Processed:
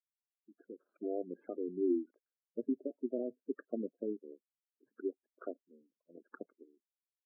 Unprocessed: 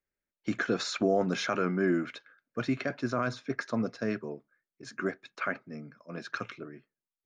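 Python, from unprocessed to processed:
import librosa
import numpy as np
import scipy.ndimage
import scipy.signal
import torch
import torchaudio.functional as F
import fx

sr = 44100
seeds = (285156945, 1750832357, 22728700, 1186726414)

y = fx.fade_in_head(x, sr, length_s=2.09)
y = fx.power_curve(y, sr, exponent=2.0)
y = fx.ladder_bandpass(y, sr, hz=400.0, resonance_pct=30)
y = fx.spec_gate(y, sr, threshold_db=-10, keep='strong')
y = F.gain(torch.from_numpy(y), 12.5).numpy()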